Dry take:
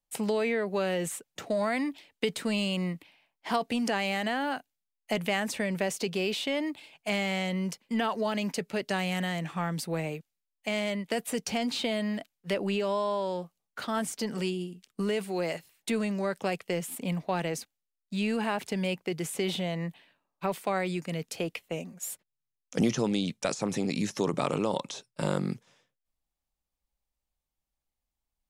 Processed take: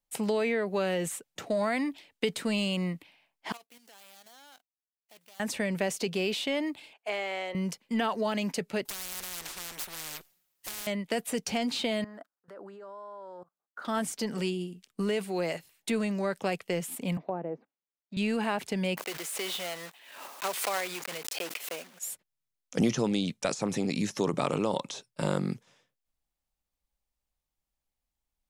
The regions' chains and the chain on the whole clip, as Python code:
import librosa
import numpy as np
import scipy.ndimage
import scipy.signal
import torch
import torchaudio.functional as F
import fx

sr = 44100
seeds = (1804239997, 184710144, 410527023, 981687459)

y = fx.chain(x, sr, fx.median_filter(points=25),
    fx.differentiator(),
    fx.level_steps(step_db=9), at=(3.52, 5.4))
y = fx.chain(y, sr, fx.highpass(hz=360.0, slope=24),
    fx.high_shelf(hz=3500.0, db=-12.0), at=(6.93, 7.55))
y = fx.chain(y, sr, fx.lower_of_two(delay_ms=5.5),
    fx.peak_eq(hz=14000.0, db=7.5, octaves=0.38),
    fx.spectral_comp(ratio=10.0), at=(8.85, 10.87))
y = fx.chain(y, sr, fx.highpass(hz=310.0, slope=12),
    fx.level_steps(step_db=23),
    fx.high_shelf_res(hz=1900.0, db=-10.0, q=3.0), at=(12.04, 13.85))
y = fx.chain(y, sr, fx.highpass(hz=240.0, slope=12),
    fx.env_lowpass_down(base_hz=810.0, full_db=-31.0),
    fx.spacing_loss(db_at_10k=26), at=(17.17, 18.17))
y = fx.chain(y, sr, fx.block_float(bits=3),
    fx.bessel_highpass(hz=650.0, order=2),
    fx.pre_swell(db_per_s=59.0), at=(18.97, 22.01))